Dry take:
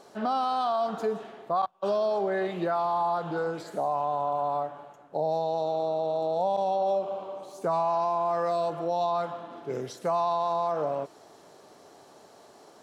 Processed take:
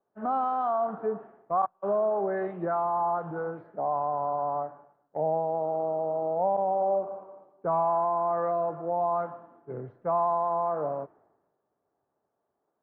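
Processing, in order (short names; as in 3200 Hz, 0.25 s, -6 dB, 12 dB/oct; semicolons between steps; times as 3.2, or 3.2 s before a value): LPF 1600 Hz 24 dB/oct; three-band expander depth 100%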